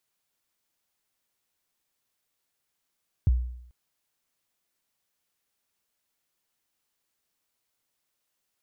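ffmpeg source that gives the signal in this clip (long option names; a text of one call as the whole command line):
ffmpeg -f lavfi -i "aevalsrc='0.178*pow(10,-3*t/0.72)*sin(2*PI*(130*0.024/log(61/130)*(exp(log(61/130)*min(t,0.024)/0.024)-1)+61*max(t-0.024,0)))':duration=0.44:sample_rate=44100" out.wav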